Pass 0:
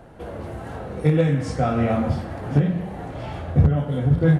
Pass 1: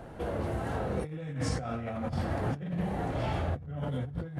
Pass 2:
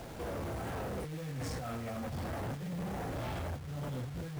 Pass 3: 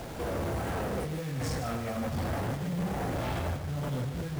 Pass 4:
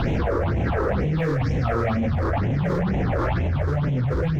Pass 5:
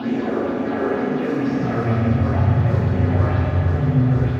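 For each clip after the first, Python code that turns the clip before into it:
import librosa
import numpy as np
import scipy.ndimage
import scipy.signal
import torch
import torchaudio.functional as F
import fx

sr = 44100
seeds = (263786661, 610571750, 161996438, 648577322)

y1 = fx.dynamic_eq(x, sr, hz=340.0, q=0.84, threshold_db=-31.0, ratio=4.0, max_db=-4)
y1 = fx.over_compress(y1, sr, threshold_db=-29.0, ratio=-1.0)
y1 = F.gain(torch.from_numpy(y1), -5.0).numpy()
y2 = fx.quant_companded(y1, sr, bits=4)
y2 = 10.0 ** (-35.0 / 20.0) * np.tanh(y2 / 10.0 ** (-35.0 / 20.0))
y3 = y2 + 10.0 ** (-9.0 / 20.0) * np.pad(y2, (int(149 * sr / 1000.0), 0))[:len(y2)]
y3 = F.gain(torch.from_numpy(y3), 5.5).numpy()
y4 = fx.air_absorb(y3, sr, metres=260.0)
y4 = fx.phaser_stages(y4, sr, stages=6, low_hz=180.0, high_hz=1300.0, hz=2.1, feedback_pct=30)
y4 = fx.env_flatten(y4, sr, amount_pct=100)
y4 = F.gain(torch.from_numpy(y4), 7.0).numpy()
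y5 = fx.filter_sweep_highpass(y4, sr, from_hz=260.0, to_hz=96.0, start_s=1.35, end_s=2.01, q=2.6)
y5 = y5 + 10.0 ** (-9.5 / 20.0) * np.pad(y5, (int(789 * sr / 1000.0), 0))[:len(y5)]
y5 = fx.rev_fdn(y5, sr, rt60_s=2.3, lf_ratio=0.75, hf_ratio=0.85, size_ms=24.0, drr_db=-6.0)
y5 = F.gain(torch.from_numpy(y5), -7.0).numpy()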